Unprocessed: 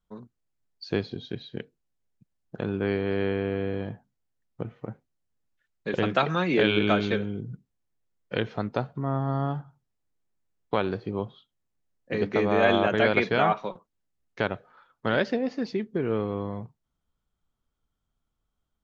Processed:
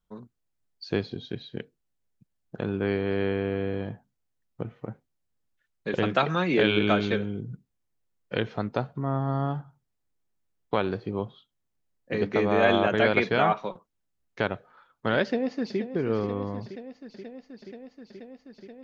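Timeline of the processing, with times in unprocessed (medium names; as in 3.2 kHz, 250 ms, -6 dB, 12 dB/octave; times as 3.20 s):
15.22–15.79 s: echo throw 480 ms, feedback 85%, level -11.5 dB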